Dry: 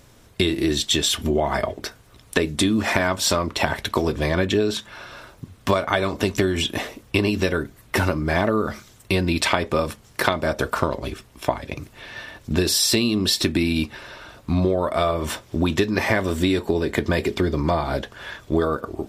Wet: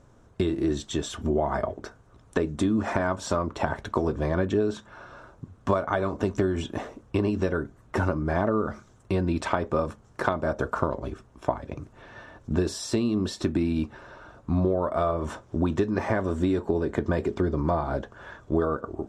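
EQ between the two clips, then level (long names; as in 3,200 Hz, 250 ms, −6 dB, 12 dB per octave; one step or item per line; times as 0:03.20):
high-frequency loss of the air 110 metres
flat-topped bell 3,100 Hz −11 dB
−3.5 dB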